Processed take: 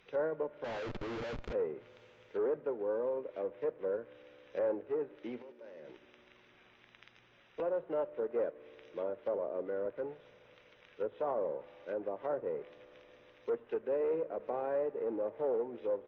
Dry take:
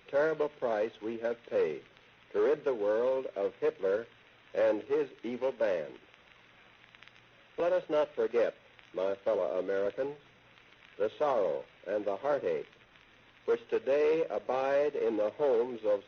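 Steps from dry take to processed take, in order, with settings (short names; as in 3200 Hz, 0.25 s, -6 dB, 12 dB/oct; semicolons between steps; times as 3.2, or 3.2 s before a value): 0.64–1.53 Schmitt trigger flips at -47.5 dBFS; 5.42–5.89 level quantiser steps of 23 dB; on a send at -18 dB: reverb RT60 5.0 s, pre-delay 3 ms; on the sum: downsampling 16000 Hz; treble ducked by the level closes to 1200 Hz, closed at -28 dBFS; gain -5 dB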